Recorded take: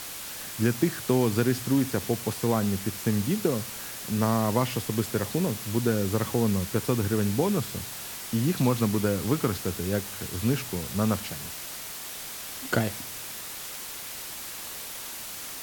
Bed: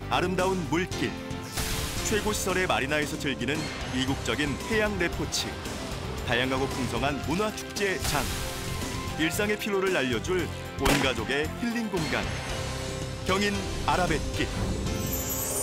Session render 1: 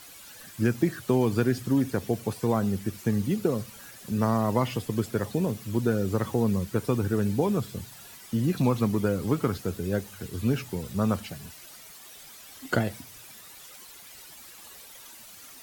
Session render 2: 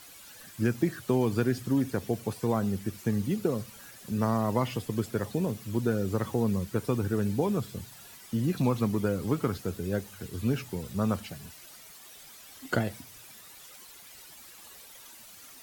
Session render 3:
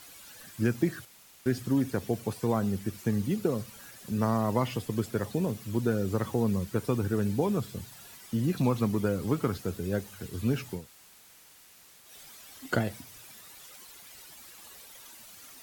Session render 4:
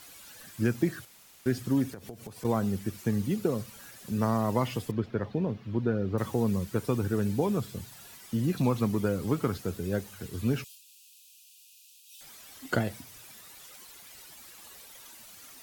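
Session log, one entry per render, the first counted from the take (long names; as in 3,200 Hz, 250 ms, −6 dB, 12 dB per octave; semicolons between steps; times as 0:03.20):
broadband denoise 12 dB, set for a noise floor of −38 dBFS
level −2.5 dB
0:01.05–0:01.46: fill with room tone; 0:10.80–0:12.07: fill with room tone, crossfade 0.16 s
0:01.91–0:02.45: downward compressor 10 to 1, threshold −38 dBFS; 0:04.91–0:06.18: high-frequency loss of the air 280 metres; 0:10.64–0:12.21: linear-phase brick-wall high-pass 2,400 Hz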